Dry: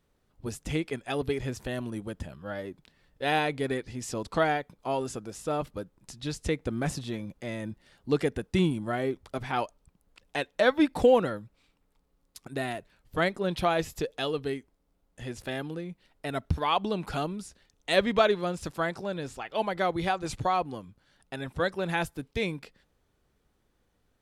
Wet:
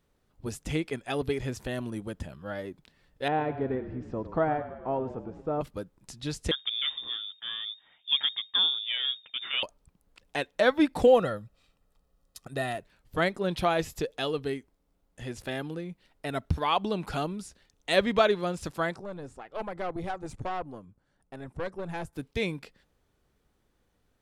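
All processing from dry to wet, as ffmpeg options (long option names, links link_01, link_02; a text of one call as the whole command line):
ffmpeg -i in.wav -filter_complex "[0:a]asettb=1/sr,asplit=3[link_01][link_02][link_03];[link_01]atrim=end=3.284[link_04];[link_02]atrim=start=3.28:end=5.61,asetpts=PTS-STARTPTS,afade=type=in:duration=0.004:curve=qsin,afade=type=out:start_time=2.326:duration=0.004:curve=qsin,lowpass=1100,asplit=8[link_05][link_06][link_07][link_08][link_09][link_10][link_11][link_12];[link_06]adelay=104,afreqshift=-30,volume=-12.5dB[link_13];[link_07]adelay=208,afreqshift=-60,volume=-16.8dB[link_14];[link_08]adelay=312,afreqshift=-90,volume=-21.1dB[link_15];[link_09]adelay=416,afreqshift=-120,volume=-25.4dB[link_16];[link_10]adelay=520,afreqshift=-150,volume=-29.7dB[link_17];[link_11]adelay=624,afreqshift=-180,volume=-34dB[link_18];[link_12]adelay=728,afreqshift=-210,volume=-38.3dB[link_19];[link_05][link_13][link_14][link_15][link_16][link_17][link_18][link_19]amix=inputs=8:normalize=0,atrim=end_sample=102753[link_20];[link_03]atrim=start=5.606[link_21];[link_04][link_20]acrossfade=duration=0.004:curve1=hsin:curve2=qsin[link_22];[link_22][link_21]acrossfade=duration=0.004:curve1=qsin:curve2=hsin,asettb=1/sr,asplit=3[link_23][link_24][link_25];[link_23]atrim=end=6.514[link_26];[link_24]atrim=start=6.51:end=9.63,asetpts=PTS-STARTPTS,afade=type=in:duration=0.004:curve=qsin,afade=type=out:start_time=3.116:duration=0.004:curve=qsin,aeval=exprs='if(lt(val(0),0),0.708*val(0),val(0))':channel_layout=same,lowpass=frequency=3100:width_type=q:width=0.5098,lowpass=frequency=3100:width_type=q:width=0.6013,lowpass=frequency=3100:width_type=q:width=0.9,lowpass=frequency=3100:width_type=q:width=2.563,afreqshift=-3700[link_27];[link_25]atrim=start=9.626[link_28];[link_26][link_27]acrossfade=duration=0.004:curve1=hsin:curve2=qsin[link_29];[link_29][link_28]acrossfade=duration=0.004:curve1=qsin:curve2=hsin,asettb=1/sr,asplit=3[link_30][link_31][link_32];[link_30]atrim=end=11.074[link_33];[link_31]atrim=start=11.07:end=12.77,asetpts=PTS-STARTPTS,afade=type=in:duration=0.004:curve=qsin,afade=type=out:start_time=1.696:duration=0.004:curve=qsin,bandreject=frequency=2200:width=7.2,aecho=1:1:1.6:0.41,atrim=end_sample=74970[link_34];[link_32]atrim=start=12.766[link_35];[link_33][link_34]acrossfade=duration=0.004:curve1=hsin:curve2=qsin[link_36];[link_36][link_35]acrossfade=duration=0.004:curve1=qsin:curve2=hsin,asettb=1/sr,asplit=3[link_37][link_38][link_39];[link_37]atrim=end=18.964[link_40];[link_38]atrim=start=18.96:end=22.13,asetpts=PTS-STARTPTS,afade=type=in:duration=0.004:curve=qsin,afade=type=out:start_time=3.166:duration=0.004:curve=qsin,lowpass=frequency=10000:width=0.5412,lowpass=frequency=10000:width=1.3066,equalizer=frequency=3600:width_type=o:width=2.2:gain=-13,aeval=exprs='(tanh(22.4*val(0)+0.65)-tanh(0.65))/22.4':channel_layout=same[link_41];[link_39]atrim=start=22.126[link_42];[link_40][link_41]acrossfade=duration=0.004:curve1=hsin:curve2=qsin[link_43];[link_43][link_42]acrossfade=duration=0.004:curve1=qsin:curve2=hsin" out.wav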